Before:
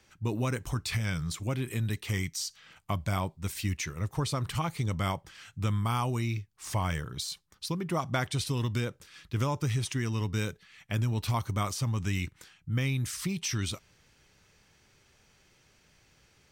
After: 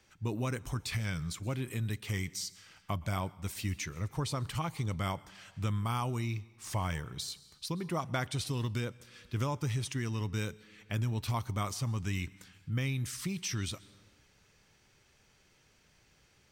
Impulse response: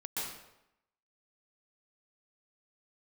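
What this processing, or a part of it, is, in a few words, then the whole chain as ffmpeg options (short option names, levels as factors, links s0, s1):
compressed reverb return: -filter_complex "[0:a]asplit=2[s0][s1];[1:a]atrim=start_sample=2205[s2];[s1][s2]afir=irnorm=-1:irlink=0,acompressor=threshold=0.0112:ratio=6,volume=0.266[s3];[s0][s3]amix=inputs=2:normalize=0,volume=0.631"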